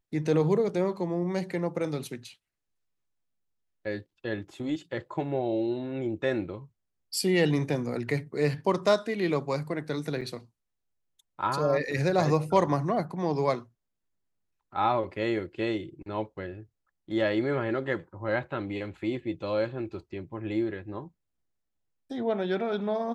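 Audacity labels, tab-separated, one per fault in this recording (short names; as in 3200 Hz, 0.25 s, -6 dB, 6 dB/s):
10.210000	10.220000	gap 6.2 ms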